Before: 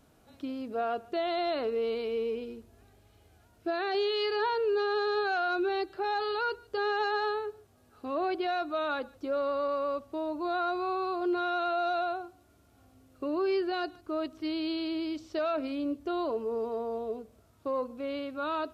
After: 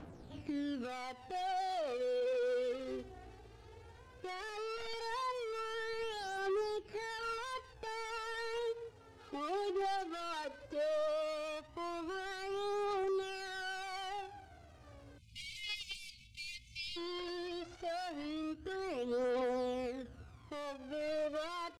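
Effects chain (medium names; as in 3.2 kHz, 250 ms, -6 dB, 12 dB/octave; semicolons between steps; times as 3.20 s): dead-time distortion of 0.2 ms; spectral selection erased 13.07–14.60 s, 230–1900 Hz; compression 12:1, threshold -40 dBFS, peak gain reduction 14.5 dB; peak limiter -37 dBFS, peak gain reduction 6.5 dB; phaser 0.18 Hz, delay 3 ms, feedback 65%; tempo 0.79×; hard clipper -36.5 dBFS, distortion -14 dB; distance through air 86 m; speed mistake 44.1 kHz file played as 48 kHz; trim +4.5 dB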